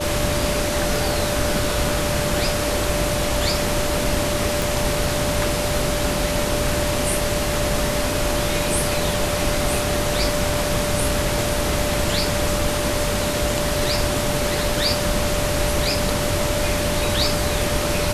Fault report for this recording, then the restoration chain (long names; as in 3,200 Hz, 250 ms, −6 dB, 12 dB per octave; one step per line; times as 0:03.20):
whistle 590 Hz −25 dBFS
0:04.62: click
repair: click removal
notch filter 590 Hz, Q 30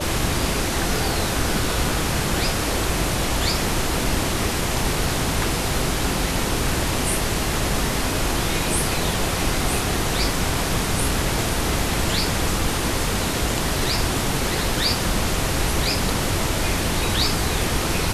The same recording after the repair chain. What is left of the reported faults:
none of them is left